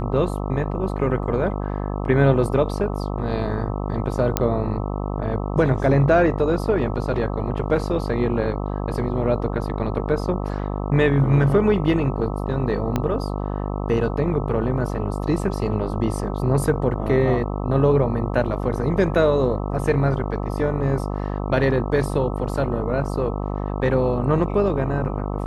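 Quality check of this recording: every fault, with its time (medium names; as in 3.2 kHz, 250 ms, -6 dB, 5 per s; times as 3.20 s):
buzz 50 Hz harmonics 26 -26 dBFS
4.37 s: pop -3 dBFS
12.96 s: pop -9 dBFS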